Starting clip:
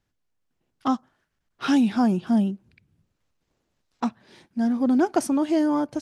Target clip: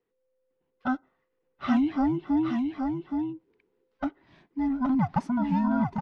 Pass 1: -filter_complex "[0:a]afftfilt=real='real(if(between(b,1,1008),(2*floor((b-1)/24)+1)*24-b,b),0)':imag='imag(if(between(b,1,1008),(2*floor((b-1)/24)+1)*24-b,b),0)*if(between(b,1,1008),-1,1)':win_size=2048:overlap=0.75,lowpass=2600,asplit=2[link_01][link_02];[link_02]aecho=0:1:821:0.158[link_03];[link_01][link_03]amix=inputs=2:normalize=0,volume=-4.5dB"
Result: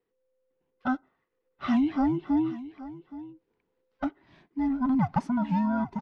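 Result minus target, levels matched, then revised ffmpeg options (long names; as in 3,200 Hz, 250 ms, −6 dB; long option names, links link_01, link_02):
echo-to-direct −11.5 dB
-filter_complex "[0:a]afftfilt=real='real(if(between(b,1,1008),(2*floor((b-1)/24)+1)*24-b,b),0)':imag='imag(if(between(b,1,1008),(2*floor((b-1)/24)+1)*24-b,b),0)*if(between(b,1,1008),-1,1)':win_size=2048:overlap=0.75,lowpass=2600,asplit=2[link_01][link_02];[link_02]aecho=0:1:821:0.596[link_03];[link_01][link_03]amix=inputs=2:normalize=0,volume=-4.5dB"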